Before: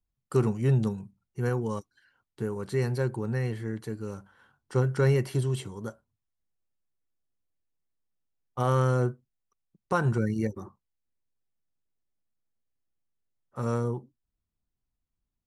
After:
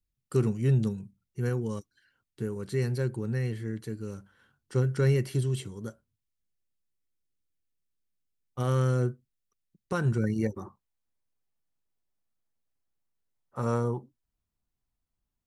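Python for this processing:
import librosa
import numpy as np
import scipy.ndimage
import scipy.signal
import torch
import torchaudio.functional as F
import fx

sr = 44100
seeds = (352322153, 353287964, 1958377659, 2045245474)

y = fx.peak_eq(x, sr, hz=880.0, db=fx.steps((0.0, -10.0), (10.24, 3.0)), octaves=1.2)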